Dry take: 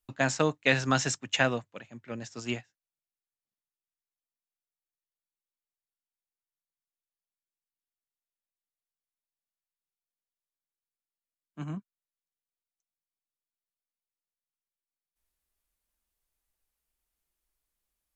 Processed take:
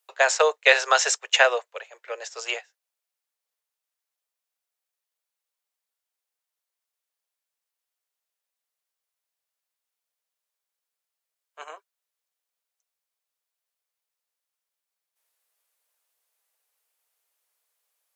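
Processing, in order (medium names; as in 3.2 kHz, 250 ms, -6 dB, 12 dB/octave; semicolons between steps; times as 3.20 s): steep high-pass 430 Hz 72 dB/octave; trim +8.5 dB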